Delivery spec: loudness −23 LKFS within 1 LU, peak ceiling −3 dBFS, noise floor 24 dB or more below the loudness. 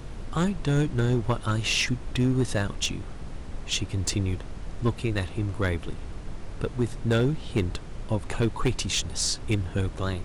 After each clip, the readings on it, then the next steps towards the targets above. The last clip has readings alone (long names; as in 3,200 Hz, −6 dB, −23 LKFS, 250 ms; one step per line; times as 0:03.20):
share of clipped samples 0.9%; peaks flattened at −17.0 dBFS; background noise floor −39 dBFS; target noise floor −52 dBFS; integrated loudness −27.5 LKFS; sample peak −17.0 dBFS; target loudness −23.0 LKFS
→ clipped peaks rebuilt −17 dBFS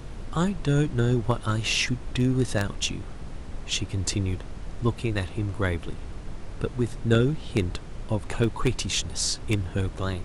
share of clipped samples 0.0%; background noise floor −39 dBFS; target noise floor −51 dBFS
→ noise reduction from a noise print 12 dB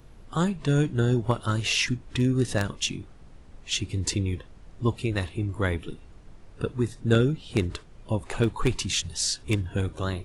background noise floor −49 dBFS; target noise floor −51 dBFS
→ noise reduction from a noise print 6 dB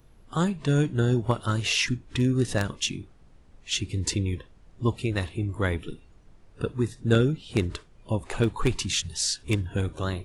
background noise floor −55 dBFS; integrated loudness −27.0 LKFS; sample peak −8.0 dBFS; target loudness −23.0 LKFS
→ level +4 dB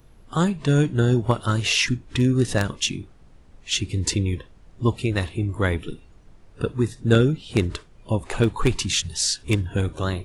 integrated loudness −23.0 LKFS; sample peak −4.0 dBFS; background noise floor −51 dBFS